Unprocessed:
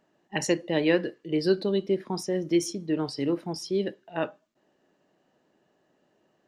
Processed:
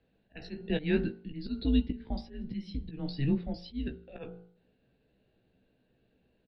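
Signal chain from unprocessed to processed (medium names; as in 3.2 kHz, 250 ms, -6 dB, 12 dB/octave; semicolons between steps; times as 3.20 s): elliptic low-pass 4.4 kHz, stop band 40 dB; peaking EQ 1.3 kHz -13 dB 0.93 oct; de-hum 52.83 Hz, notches 31; slow attack 219 ms; frequency shift -140 Hz; doubling 16 ms -7 dB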